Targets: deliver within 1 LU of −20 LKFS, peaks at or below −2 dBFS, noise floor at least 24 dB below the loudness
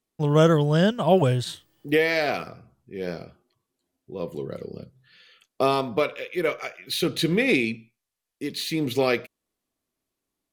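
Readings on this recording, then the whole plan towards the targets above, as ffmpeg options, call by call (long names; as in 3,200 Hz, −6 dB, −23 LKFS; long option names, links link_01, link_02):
integrated loudness −24.0 LKFS; sample peak −7.5 dBFS; target loudness −20.0 LKFS
→ -af "volume=4dB"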